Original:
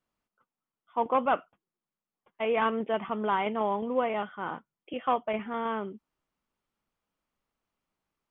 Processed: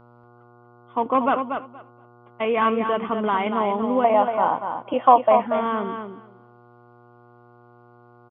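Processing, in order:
0:04.04–0:05.47: flat-topped bell 730 Hz +12 dB 1.2 octaves
in parallel at −2.5 dB: downward compressor, threshold −30 dBFS, peak gain reduction 18 dB
on the sum: hollow resonant body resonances 270/1,100 Hz, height 7 dB
hum with harmonics 120 Hz, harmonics 12, −53 dBFS −3 dB per octave
on a send: repeating echo 236 ms, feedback 16%, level −7 dB
on the sum: downsampling to 11,025 Hz
level +1.5 dB

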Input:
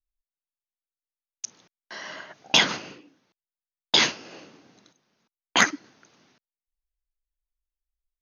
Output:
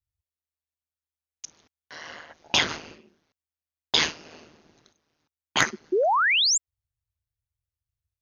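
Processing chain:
ring modulation 78 Hz
sound drawn into the spectrogram rise, 0:05.92–0:06.58, 340–7,700 Hz −21 dBFS

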